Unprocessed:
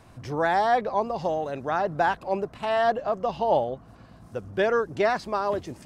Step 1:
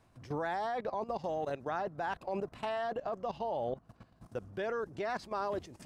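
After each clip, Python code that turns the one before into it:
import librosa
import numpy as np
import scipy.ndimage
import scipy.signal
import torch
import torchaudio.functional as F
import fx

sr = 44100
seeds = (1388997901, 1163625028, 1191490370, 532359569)

y = fx.level_steps(x, sr, step_db=16)
y = F.gain(torch.from_numpy(y), -2.5).numpy()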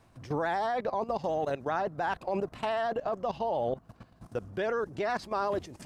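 y = fx.vibrato(x, sr, rate_hz=13.0, depth_cents=38.0)
y = F.gain(torch.from_numpy(y), 5.0).numpy()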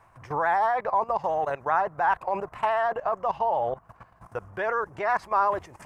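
y = fx.graphic_eq_10(x, sr, hz=(250, 1000, 2000, 4000), db=(-9, 11, 6, -9))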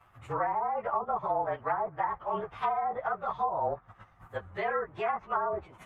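y = fx.partial_stretch(x, sr, pct=109)
y = fx.env_lowpass_down(y, sr, base_hz=750.0, full_db=-23.0)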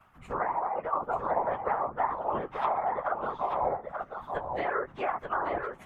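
y = fx.whisperise(x, sr, seeds[0])
y = y + 10.0 ** (-5.5 / 20.0) * np.pad(y, (int(885 * sr / 1000.0), 0))[:len(y)]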